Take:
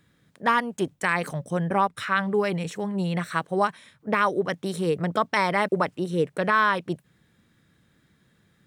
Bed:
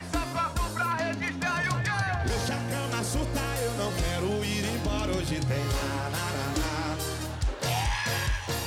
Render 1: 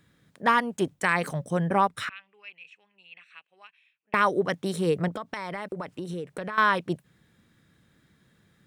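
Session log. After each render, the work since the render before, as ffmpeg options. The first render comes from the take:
-filter_complex "[0:a]asettb=1/sr,asplit=3[a][b][c];[a]atrim=end=2.094[d];[b]atrim=start=2.09:end=4.14,asetpts=PTS-STARTPTS,afade=t=in:d=0.004:c=qsin,afade=t=out:st=2.046:d=0.004:c=qsin,bandpass=f=2.6k:t=q:w=14[e];[c]atrim=start=4.136[f];[d][e]acrossfade=d=0.004:c1=hsin:c2=qsin[g];[g][f]acrossfade=d=0.004:c1=qsin:c2=hsin,asettb=1/sr,asplit=3[h][i][j];[h]atrim=end=5.084[k];[i]atrim=start=5.08:end=6.58,asetpts=PTS-STARTPTS,afade=t=in:d=0.004:c=qsin,afade=t=out:st=1.496:d=0.004:c=qsin,acompressor=threshold=-30dB:ratio=8:attack=3.2:release=140:knee=1:detection=peak[l];[j]atrim=start=6.576[m];[k][l]acrossfade=d=0.004:c1=hsin:c2=qsin[n];[n][m]acrossfade=d=0.004:c1=qsin:c2=hsin"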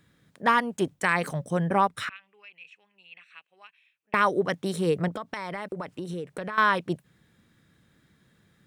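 -filter_complex "[0:a]asettb=1/sr,asplit=3[a][b][c];[a]atrim=end=2.164[d];[b]atrim=start=2.16:end=2.57,asetpts=PTS-STARTPTS,afade=t=in:d=0.004:c=qsin,afade=t=out:st=0.406:d=0.004:c=qsin,acompressor=threshold=-46dB:ratio=2:attack=3.2:release=140:knee=1:detection=peak[e];[c]atrim=start=2.566[f];[d][e]acrossfade=d=0.004:c1=hsin:c2=qsin[g];[g][f]acrossfade=d=0.004:c1=qsin:c2=hsin"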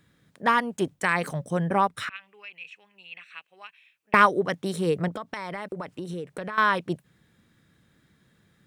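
-filter_complex "[0:a]asplit=3[a][b][c];[a]afade=t=out:st=2.13:d=0.02[d];[b]acontrast=57,afade=t=in:st=2.13:d=0.02,afade=t=out:st=4.25:d=0.02[e];[c]afade=t=in:st=4.25:d=0.02[f];[d][e][f]amix=inputs=3:normalize=0"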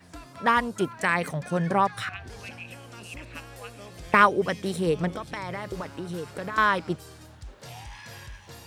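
-filter_complex "[1:a]volume=-14.5dB[a];[0:a][a]amix=inputs=2:normalize=0"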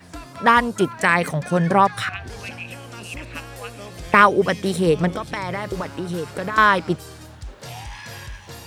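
-af "volume=7dB,alimiter=limit=-1dB:level=0:latency=1"

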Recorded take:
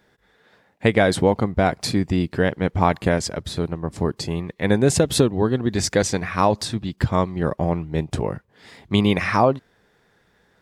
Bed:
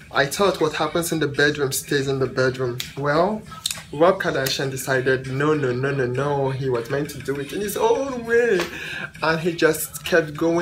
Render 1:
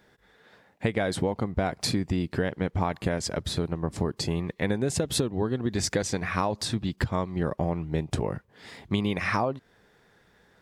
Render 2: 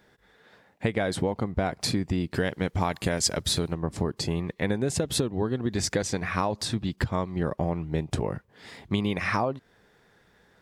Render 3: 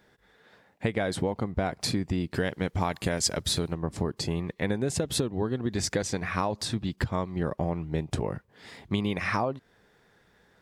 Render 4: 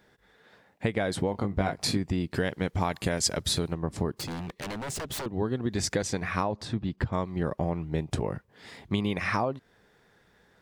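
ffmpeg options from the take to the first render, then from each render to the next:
-af "acompressor=threshold=-23dB:ratio=6"
-filter_complex "[0:a]asettb=1/sr,asplit=3[a][b][c];[a]atrim=end=2.344[d];[b]atrim=start=2.34:end=3.75,asetpts=PTS-STARTPTS,afade=t=in:d=0.004:c=qsin,afade=t=out:st=1.406:d=0.004:c=qsin,highshelf=f=3.2k:g=11[e];[c]atrim=start=3.746[f];[d][e]acrossfade=d=0.004:c1=hsin:c2=qsin[g];[g][f]acrossfade=d=0.004:c1=qsin:c2=hsin"
-af "volume=-1.5dB"
-filter_complex "[0:a]asettb=1/sr,asplit=3[a][b][c];[a]atrim=end=1.324[d];[b]atrim=start=1.32:end=1.97,asetpts=PTS-STARTPTS,afade=t=in:d=0.004:c=qsin,afade=t=out:st=0.646:d=0.004:c=qsin,asplit=2[e][f];[f]adelay=20,volume=-5dB[g];[e][g]amix=inputs=2:normalize=0,atrim=end_sample=28665[h];[c]atrim=start=1.966[i];[d][h]acrossfade=d=0.004:c1=hsin:c2=qsin[j];[j][i]acrossfade=d=0.004:c1=qsin:c2=hsin,asettb=1/sr,asplit=3[k][l][m];[k]atrim=end=4.124[n];[l]atrim=start=4.12:end=5.26,asetpts=PTS-STARTPTS,afade=t=in:d=0.004:c=qsin,afade=t=out:st=1.136:d=0.004:c=qsin,aeval=exprs='0.0335*(abs(mod(val(0)/0.0335+3,4)-2)-1)':c=same[o];[m]atrim=start=5.256[p];[n][o]acrossfade=d=0.004:c1=hsin:c2=qsin[q];[q][p]acrossfade=d=0.004:c1=qsin:c2=hsin,asettb=1/sr,asplit=3[r][s][t];[r]atrim=end=6.434[u];[s]atrim=start=6.43:end=7.13,asetpts=PTS-STARTPTS,afade=t=in:d=0.004:c=qsin,afade=t=out:st=0.696:d=0.004:c=qsin,lowpass=f=1.9k:p=1[v];[t]atrim=start=7.126[w];[u][v]acrossfade=d=0.004:c1=hsin:c2=qsin[x];[x][w]acrossfade=d=0.004:c1=qsin:c2=hsin"

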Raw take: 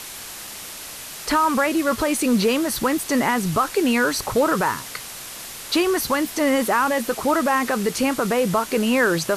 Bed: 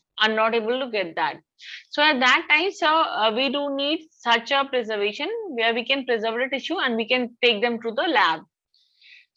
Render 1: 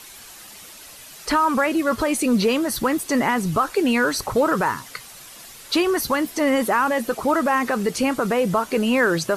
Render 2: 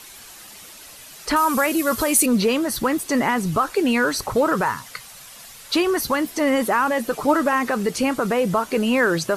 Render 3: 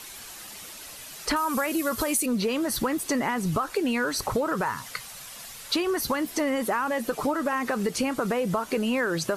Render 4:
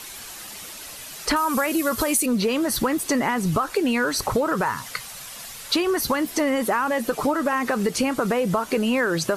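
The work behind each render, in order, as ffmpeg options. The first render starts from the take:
-af "afftdn=nr=9:nf=-36"
-filter_complex "[0:a]asettb=1/sr,asplit=3[a][b][c];[a]atrim=end=1.364[d];[b]atrim=start=1.36:end=2.26,asetpts=PTS-STARTPTS,afade=t=in:d=0.004:c=qsin,afade=t=out:st=0.896:d=0.004:c=qsin,aemphasis=mode=production:type=50fm[e];[c]atrim=start=2.256[f];[d][e]acrossfade=d=0.004:c1=hsin:c2=qsin[g];[g][f]acrossfade=d=0.004:c1=qsin:c2=hsin,asettb=1/sr,asplit=3[h][i][j];[h]atrim=end=4.644[k];[i]atrim=start=4.64:end=5.73,asetpts=PTS-STARTPTS,afade=t=in:d=0.004:c=qsin,afade=t=out:st=1.086:d=0.004:c=qsin,equalizer=f=330:t=o:w=0.51:g=-10.5[l];[j]atrim=start=5.726[m];[k][l]acrossfade=d=0.004:c1=hsin:c2=qsin[n];[n][m]acrossfade=d=0.004:c1=qsin:c2=hsin,asettb=1/sr,asplit=3[o][p][q];[o]atrim=end=7.124[r];[p]atrim=start=7.12:end=7.53,asetpts=PTS-STARTPTS,afade=t=in:d=0.004:c=qsin,afade=t=out:st=0.406:d=0.004:c=qsin,aecho=1:1:6.8:0.55,atrim=end_sample=18081[s];[q]atrim=start=7.526[t];[r][s]acrossfade=d=0.004:c1=hsin:c2=qsin[u];[u][t]acrossfade=d=0.004:c1=qsin:c2=hsin"
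-af "acompressor=threshold=-23dB:ratio=6"
-af "volume=4dB"

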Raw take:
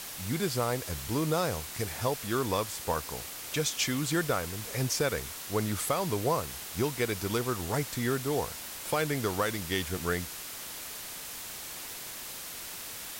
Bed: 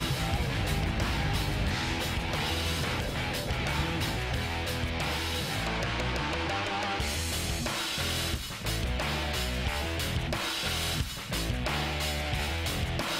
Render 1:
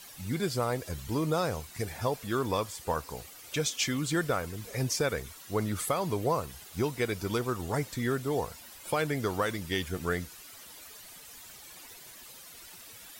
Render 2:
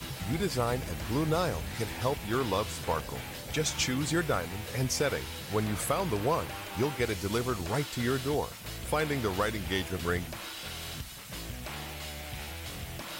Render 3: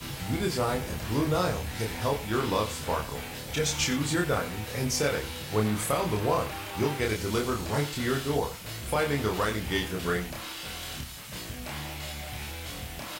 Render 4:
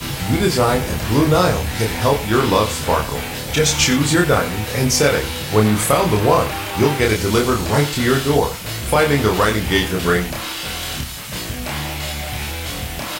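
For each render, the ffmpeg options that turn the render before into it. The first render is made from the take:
-af "afftdn=nr=12:nf=-42"
-filter_complex "[1:a]volume=-9.5dB[a];[0:a][a]amix=inputs=2:normalize=0"
-filter_complex "[0:a]asplit=2[a][b];[b]adelay=28,volume=-2dB[c];[a][c]amix=inputs=2:normalize=0,aecho=1:1:89:0.178"
-af "volume=12dB,alimiter=limit=-2dB:level=0:latency=1"

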